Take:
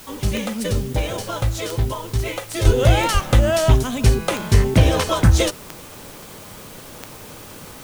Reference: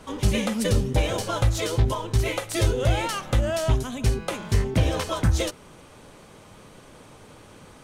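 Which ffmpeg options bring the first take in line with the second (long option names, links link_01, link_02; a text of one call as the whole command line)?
ffmpeg -i in.wav -filter_complex "[0:a]adeclick=threshold=4,asplit=3[link_01][link_02][link_03];[link_01]afade=type=out:start_time=2.66:duration=0.02[link_04];[link_02]highpass=frequency=140:width=0.5412,highpass=frequency=140:width=1.3066,afade=type=in:start_time=2.66:duration=0.02,afade=type=out:start_time=2.78:duration=0.02[link_05];[link_03]afade=type=in:start_time=2.78:duration=0.02[link_06];[link_04][link_05][link_06]amix=inputs=3:normalize=0,asplit=3[link_07][link_08][link_09];[link_07]afade=type=out:start_time=3.13:duration=0.02[link_10];[link_08]highpass=frequency=140:width=0.5412,highpass=frequency=140:width=1.3066,afade=type=in:start_time=3.13:duration=0.02,afade=type=out:start_time=3.25:duration=0.02[link_11];[link_09]afade=type=in:start_time=3.25:duration=0.02[link_12];[link_10][link_11][link_12]amix=inputs=3:normalize=0,afwtdn=0.0071,asetnsamples=nb_out_samples=441:pad=0,asendcmd='2.65 volume volume -7.5dB',volume=0dB" out.wav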